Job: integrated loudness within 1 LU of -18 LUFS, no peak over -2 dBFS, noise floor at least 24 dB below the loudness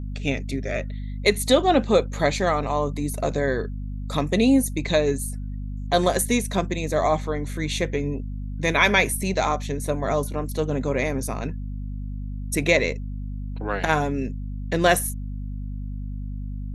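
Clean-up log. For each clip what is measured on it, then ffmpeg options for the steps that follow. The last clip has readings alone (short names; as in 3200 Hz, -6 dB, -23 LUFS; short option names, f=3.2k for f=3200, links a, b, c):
hum 50 Hz; harmonics up to 250 Hz; hum level -28 dBFS; loudness -24.0 LUFS; peak -3.5 dBFS; loudness target -18.0 LUFS
-> -af "bandreject=f=50:t=h:w=4,bandreject=f=100:t=h:w=4,bandreject=f=150:t=h:w=4,bandreject=f=200:t=h:w=4,bandreject=f=250:t=h:w=4"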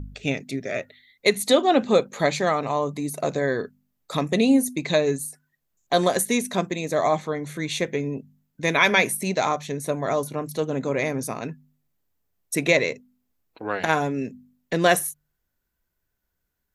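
hum none; loudness -23.5 LUFS; peak -4.0 dBFS; loudness target -18.0 LUFS
-> -af "volume=5.5dB,alimiter=limit=-2dB:level=0:latency=1"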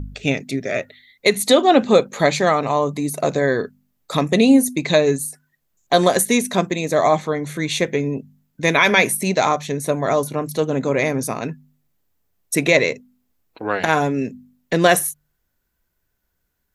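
loudness -18.5 LUFS; peak -2.0 dBFS; noise floor -73 dBFS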